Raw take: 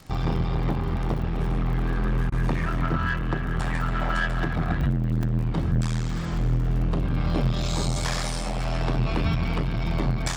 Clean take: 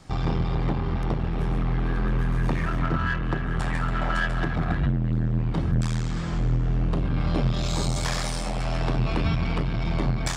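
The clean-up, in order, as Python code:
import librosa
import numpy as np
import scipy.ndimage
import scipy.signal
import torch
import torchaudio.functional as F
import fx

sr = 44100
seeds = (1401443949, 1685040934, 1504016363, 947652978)

y = fx.fix_declick_ar(x, sr, threshold=6.5)
y = fx.fix_interpolate(y, sr, at_s=(4.81, 5.23), length_ms=3.1)
y = fx.fix_interpolate(y, sr, at_s=(2.3,), length_ms=20.0)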